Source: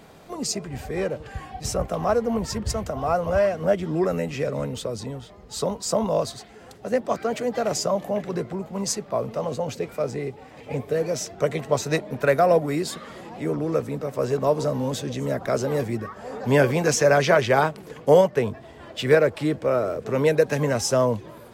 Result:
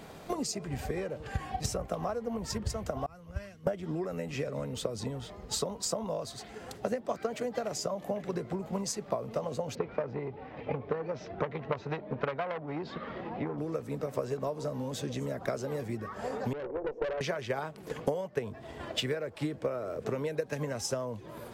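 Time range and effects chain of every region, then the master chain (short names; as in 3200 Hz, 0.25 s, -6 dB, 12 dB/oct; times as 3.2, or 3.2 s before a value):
3.06–3.67 passive tone stack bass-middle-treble 6-0-2 + three-band expander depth 100%
9.75–13.58 Gaussian blur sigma 2.6 samples + core saturation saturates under 1300 Hz
16.53–17.21 Butterworth band-pass 450 Hz, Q 1.7 + tube stage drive 24 dB, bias 0.5
whole clip: compressor 8:1, threshold -33 dBFS; transient shaper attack +6 dB, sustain +2 dB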